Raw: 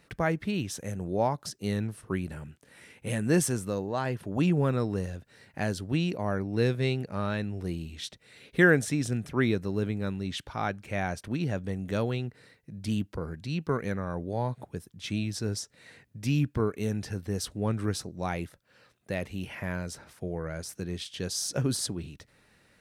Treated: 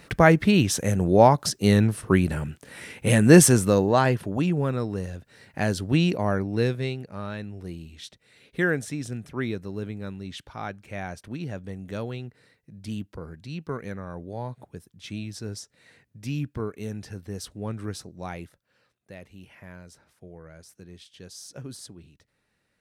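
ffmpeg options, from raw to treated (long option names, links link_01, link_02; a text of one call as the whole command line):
ffmpeg -i in.wav -af "volume=18dB,afade=type=out:start_time=3.93:duration=0.5:silence=0.281838,afade=type=in:start_time=4.98:duration=1.09:silence=0.473151,afade=type=out:start_time=6.07:duration=0.9:silence=0.298538,afade=type=out:start_time=18.29:duration=0.82:silence=0.421697" out.wav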